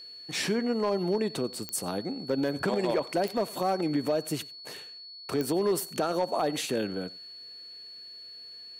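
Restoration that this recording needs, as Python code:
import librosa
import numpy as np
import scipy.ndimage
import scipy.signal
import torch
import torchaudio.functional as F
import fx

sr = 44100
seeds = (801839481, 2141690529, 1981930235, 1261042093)

y = fx.fix_declip(x, sr, threshold_db=-19.5)
y = fx.fix_declick_ar(y, sr, threshold=10.0)
y = fx.notch(y, sr, hz=4400.0, q=30.0)
y = fx.fix_echo_inverse(y, sr, delay_ms=91, level_db=-22.5)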